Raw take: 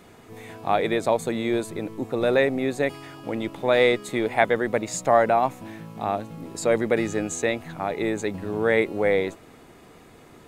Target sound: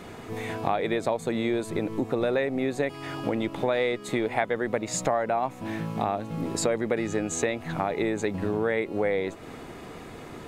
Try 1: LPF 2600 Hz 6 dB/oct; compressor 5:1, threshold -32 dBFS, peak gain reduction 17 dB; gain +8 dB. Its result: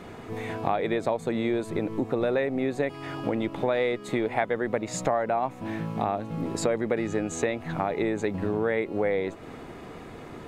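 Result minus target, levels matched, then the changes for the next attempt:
8000 Hz band -4.5 dB
change: LPF 6000 Hz 6 dB/oct

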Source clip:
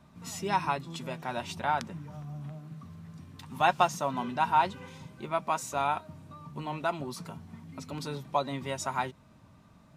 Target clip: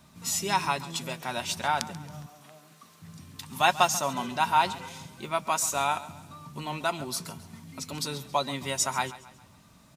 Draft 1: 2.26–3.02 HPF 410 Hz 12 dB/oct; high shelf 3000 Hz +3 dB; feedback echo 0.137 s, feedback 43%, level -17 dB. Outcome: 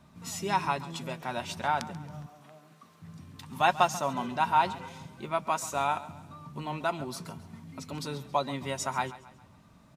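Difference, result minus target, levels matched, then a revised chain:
8000 Hz band -7.0 dB
2.26–3.02 HPF 410 Hz 12 dB/oct; high shelf 3000 Hz +14.5 dB; feedback echo 0.137 s, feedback 43%, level -17 dB

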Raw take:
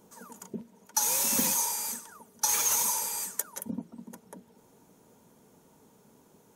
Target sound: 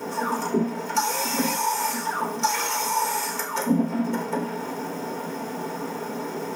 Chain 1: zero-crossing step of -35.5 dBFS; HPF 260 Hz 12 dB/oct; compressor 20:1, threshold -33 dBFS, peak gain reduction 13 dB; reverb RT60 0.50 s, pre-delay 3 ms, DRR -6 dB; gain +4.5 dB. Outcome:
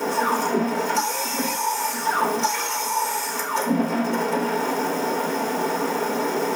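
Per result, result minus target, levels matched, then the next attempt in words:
zero-crossing step: distortion +9 dB; 125 Hz band -4.0 dB
zero-crossing step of -45.5 dBFS; HPF 260 Hz 12 dB/oct; compressor 20:1, threshold -33 dBFS, peak gain reduction 12.5 dB; reverb RT60 0.50 s, pre-delay 3 ms, DRR -6 dB; gain +4.5 dB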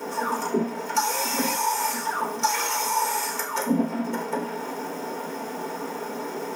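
125 Hz band -5.0 dB
zero-crossing step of -45.5 dBFS; HPF 120 Hz 12 dB/oct; compressor 20:1, threshold -33 dBFS, peak gain reduction 12.5 dB; reverb RT60 0.50 s, pre-delay 3 ms, DRR -6 dB; gain +4.5 dB

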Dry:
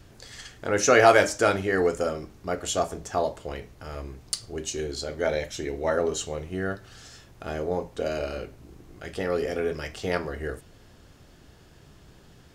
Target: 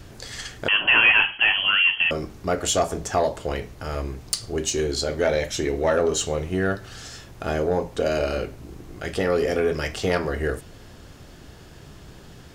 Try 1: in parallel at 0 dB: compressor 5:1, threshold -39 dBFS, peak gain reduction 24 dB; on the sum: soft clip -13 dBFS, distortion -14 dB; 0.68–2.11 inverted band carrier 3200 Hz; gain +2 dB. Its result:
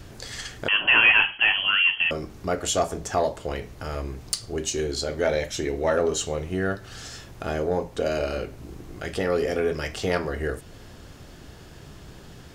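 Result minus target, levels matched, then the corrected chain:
compressor: peak gain reduction +9.5 dB
in parallel at 0 dB: compressor 5:1, threshold -27 dBFS, peak gain reduction 14.5 dB; on the sum: soft clip -13 dBFS, distortion -13 dB; 0.68–2.11 inverted band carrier 3200 Hz; gain +2 dB

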